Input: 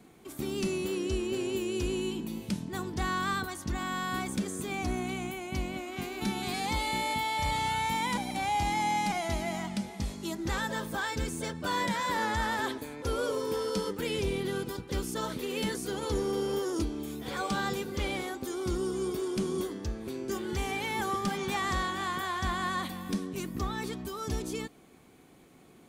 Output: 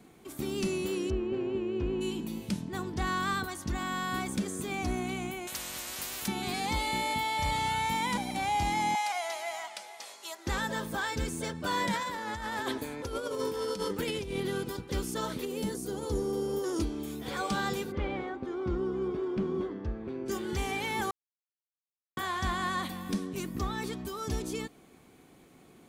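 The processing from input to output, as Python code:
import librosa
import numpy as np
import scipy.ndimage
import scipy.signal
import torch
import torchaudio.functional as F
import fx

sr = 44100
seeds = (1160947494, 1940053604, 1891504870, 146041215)

y = fx.lowpass(x, sr, hz=1700.0, slope=12, at=(1.09, 2.0), fade=0.02)
y = fx.high_shelf(y, sr, hz=5700.0, db=-5.0, at=(2.61, 3.07))
y = fx.spectral_comp(y, sr, ratio=10.0, at=(5.47, 6.28))
y = fx.highpass(y, sr, hz=600.0, slope=24, at=(8.95, 10.47))
y = fx.over_compress(y, sr, threshold_db=-33.0, ratio=-0.5, at=(11.93, 14.4))
y = fx.peak_eq(y, sr, hz=2300.0, db=-10.5, octaves=2.2, at=(15.45, 16.64))
y = fx.lowpass(y, sr, hz=1900.0, slope=12, at=(17.91, 20.25), fade=0.02)
y = fx.edit(y, sr, fx.silence(start_s=21.11, length_s=1.06), tone=tone)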